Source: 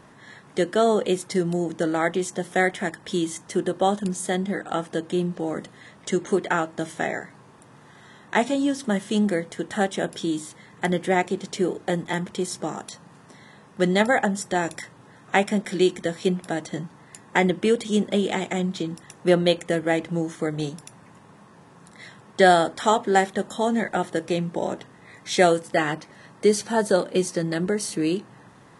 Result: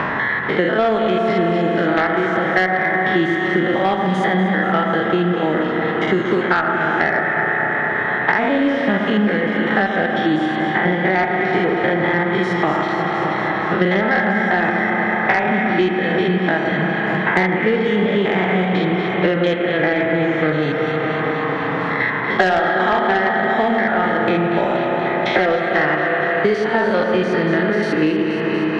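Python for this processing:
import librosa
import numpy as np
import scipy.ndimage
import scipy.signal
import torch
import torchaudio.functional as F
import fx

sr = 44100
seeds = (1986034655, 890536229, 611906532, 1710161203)

p1 = fx.spec_steps(x, sr, hold_ms=100)
p2 = fx.peak_eq(p1, sr, hz=1800.0, db=12.0, octaves=2.2)
p3 = fx.rider(p2, sr, range_db=10, speed_s=0.5)
p4 = p2 + (p3 * 10.0 ** (-2.5 / 20.0))
p5 = fx.air_absorb(p4, sr, metres=320.0)
p6 = p5 + fx.echo_alternate(p5, sr, ms=119, hz=1500.0, feedback_pct=80, wet_db=-7.5, dry=0)
p7 = fx.rev_spring(p6, sr, rt60_s=3.8, pass_ms=(32,), chirp_ms=75, drr_db=4.5)
p8 = fx.cheby_harmonics(p7, sr, harmonics=(5,), levels_db=(-14,), full_scale_db=4.0)
p9 = fx.band_squash(p8, sr, depth_pct=100)
y = p9 * 10.0 ** (-7.0 / 20.0)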